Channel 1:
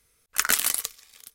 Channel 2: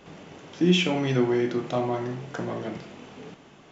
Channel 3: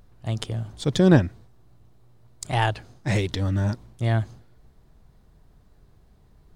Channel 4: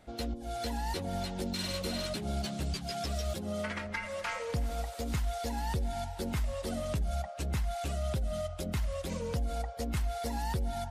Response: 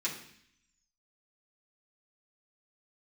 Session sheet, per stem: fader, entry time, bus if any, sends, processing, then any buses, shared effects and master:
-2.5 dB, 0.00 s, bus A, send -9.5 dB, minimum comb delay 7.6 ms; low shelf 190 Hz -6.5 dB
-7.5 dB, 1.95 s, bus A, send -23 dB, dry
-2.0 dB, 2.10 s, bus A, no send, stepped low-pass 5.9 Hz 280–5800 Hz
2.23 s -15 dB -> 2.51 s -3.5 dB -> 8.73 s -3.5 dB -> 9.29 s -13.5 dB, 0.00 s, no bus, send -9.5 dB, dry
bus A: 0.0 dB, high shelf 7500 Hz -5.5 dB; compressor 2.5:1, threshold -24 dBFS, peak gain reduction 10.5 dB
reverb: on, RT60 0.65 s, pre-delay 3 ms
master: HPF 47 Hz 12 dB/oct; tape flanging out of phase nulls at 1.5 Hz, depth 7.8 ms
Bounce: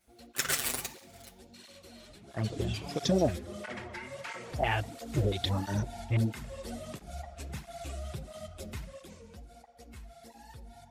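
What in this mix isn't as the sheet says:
stem 2 -7.5 dB -> -16.5 dB; master: missing HPF 47 Hz 12 dB/oct

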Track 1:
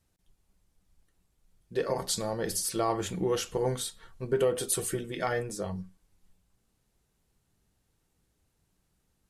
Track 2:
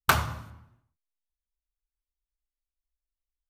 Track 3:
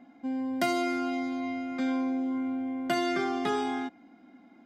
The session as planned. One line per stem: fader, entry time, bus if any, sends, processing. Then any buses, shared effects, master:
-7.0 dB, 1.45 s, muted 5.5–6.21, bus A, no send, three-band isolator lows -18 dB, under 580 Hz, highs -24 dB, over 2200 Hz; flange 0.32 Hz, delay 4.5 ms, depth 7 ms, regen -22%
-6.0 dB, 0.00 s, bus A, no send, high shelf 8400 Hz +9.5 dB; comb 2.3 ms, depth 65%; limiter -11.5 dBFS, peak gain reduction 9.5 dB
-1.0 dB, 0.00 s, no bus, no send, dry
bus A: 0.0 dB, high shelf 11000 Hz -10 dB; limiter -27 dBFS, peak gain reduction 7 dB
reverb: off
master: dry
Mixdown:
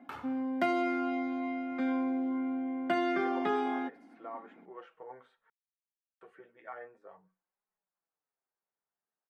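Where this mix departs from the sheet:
stem 2 -6.0 dB -> -16.0 dB; master: extra three-band isolator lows -23 dB, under 170 Hz, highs -18 dB, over 2900 Hz

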